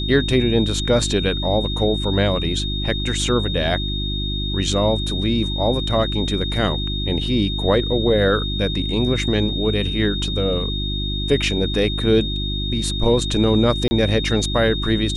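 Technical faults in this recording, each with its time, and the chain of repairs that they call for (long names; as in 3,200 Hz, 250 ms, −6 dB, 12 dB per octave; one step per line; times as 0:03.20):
mains hum 50 Hz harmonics 7 −25 dBFS
whistle 3,700 Hz −26 dBFS
0:13.88–0:13.91: drop-out 30 ms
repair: notch filter 3,700 Hz, Q 30
hum removal 50 Hz, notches 7
repair the gap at 0:13.88, 30 ms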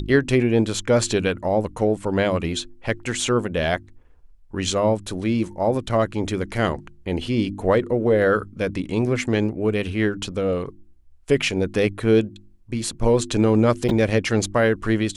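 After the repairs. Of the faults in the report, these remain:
none of them is left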